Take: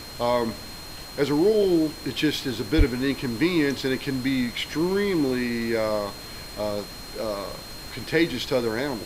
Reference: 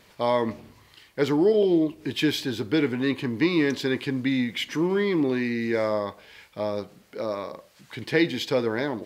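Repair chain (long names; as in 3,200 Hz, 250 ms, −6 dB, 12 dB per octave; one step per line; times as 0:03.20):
clipped peaks rebuilt −9 dBFS
notch filter 4,200 Hz, Q 30
0:02.77–0:02.89: high-pass filter 140 Hz 24 dB per octave
noise reduction from a noise print 15 dB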